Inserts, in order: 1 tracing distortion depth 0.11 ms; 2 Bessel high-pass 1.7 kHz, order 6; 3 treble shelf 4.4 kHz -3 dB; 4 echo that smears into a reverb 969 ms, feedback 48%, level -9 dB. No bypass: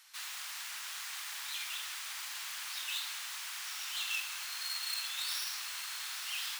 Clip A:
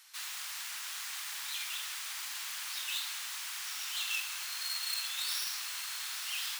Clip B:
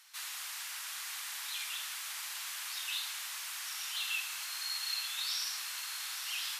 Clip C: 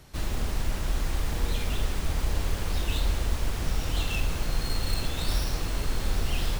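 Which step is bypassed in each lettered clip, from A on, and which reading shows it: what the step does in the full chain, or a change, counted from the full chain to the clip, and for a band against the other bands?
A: 3, 8 kHz band +1.5 dB; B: 1, crest factor change -1.5 dB; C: 2, 1 kHz band +8.5 dB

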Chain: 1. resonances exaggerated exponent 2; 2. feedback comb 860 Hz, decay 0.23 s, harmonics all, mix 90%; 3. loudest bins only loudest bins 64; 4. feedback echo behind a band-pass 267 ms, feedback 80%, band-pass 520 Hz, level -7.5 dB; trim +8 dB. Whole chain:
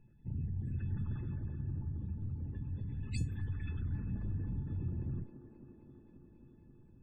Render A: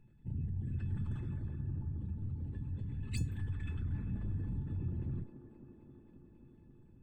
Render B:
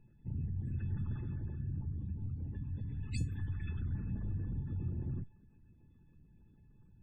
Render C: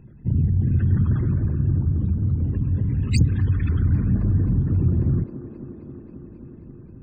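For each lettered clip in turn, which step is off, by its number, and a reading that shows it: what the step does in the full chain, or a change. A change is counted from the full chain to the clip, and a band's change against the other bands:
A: 3, 8 kHz band +2.5 dB; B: 4, momentary loudness spread change -14 LU; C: 2, 2 kHz band -4.0 dB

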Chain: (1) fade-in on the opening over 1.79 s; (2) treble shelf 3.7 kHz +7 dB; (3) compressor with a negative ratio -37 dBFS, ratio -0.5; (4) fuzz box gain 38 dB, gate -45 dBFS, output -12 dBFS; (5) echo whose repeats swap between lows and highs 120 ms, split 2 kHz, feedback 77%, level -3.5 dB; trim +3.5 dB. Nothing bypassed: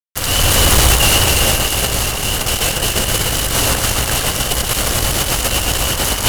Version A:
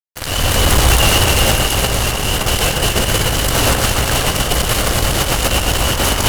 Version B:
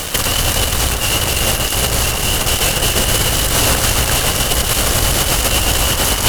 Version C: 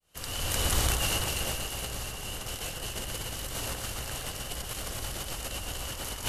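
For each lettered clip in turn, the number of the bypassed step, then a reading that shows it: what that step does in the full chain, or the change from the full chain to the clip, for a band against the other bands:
2, 8 kHz band -4.5 dB; 1, momentary loudness spread change -4 LU; 4, distortion -6 dB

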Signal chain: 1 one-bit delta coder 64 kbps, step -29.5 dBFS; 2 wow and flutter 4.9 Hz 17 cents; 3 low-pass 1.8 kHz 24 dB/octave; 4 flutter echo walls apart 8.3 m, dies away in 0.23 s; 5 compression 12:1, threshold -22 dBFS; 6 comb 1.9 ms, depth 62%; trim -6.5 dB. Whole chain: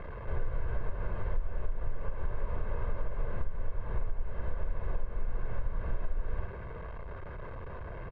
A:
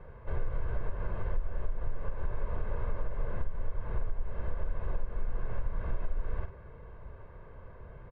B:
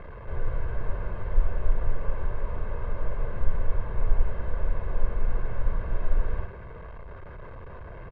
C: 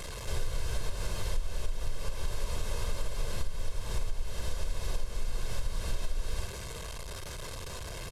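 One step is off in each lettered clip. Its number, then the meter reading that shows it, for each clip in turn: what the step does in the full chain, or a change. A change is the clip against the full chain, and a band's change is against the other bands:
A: 1, momentary loudness spread change +7 LU; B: 5, mean gain reduction 4.5 dB; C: 3, 2 kHz band +3.5 dB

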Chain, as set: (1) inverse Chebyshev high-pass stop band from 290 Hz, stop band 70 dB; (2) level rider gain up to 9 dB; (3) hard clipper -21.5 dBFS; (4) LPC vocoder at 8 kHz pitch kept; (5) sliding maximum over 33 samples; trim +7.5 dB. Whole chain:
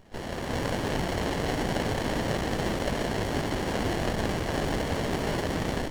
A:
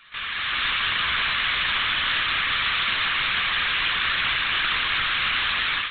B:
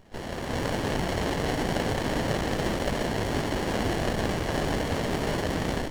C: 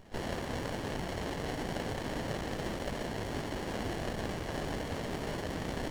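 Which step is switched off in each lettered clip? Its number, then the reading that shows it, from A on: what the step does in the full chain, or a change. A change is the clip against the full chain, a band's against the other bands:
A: 5, 4 kHz band +27.0 dB; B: 3, distortion -15 dB; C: 2, loudness change -8.0 LU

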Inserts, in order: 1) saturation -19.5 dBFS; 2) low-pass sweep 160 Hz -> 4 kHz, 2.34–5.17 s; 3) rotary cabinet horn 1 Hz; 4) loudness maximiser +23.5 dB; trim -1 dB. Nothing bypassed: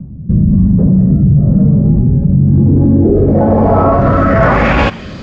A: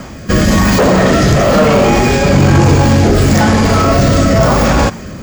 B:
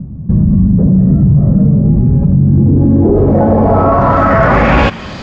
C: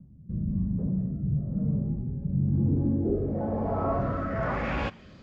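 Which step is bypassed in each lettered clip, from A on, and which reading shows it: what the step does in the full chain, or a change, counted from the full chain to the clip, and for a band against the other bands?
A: 2, 125 Hz band -4.5 dB; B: 3, 1 kHz band +2.0 dB; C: 4, crest factor change +5.5 dB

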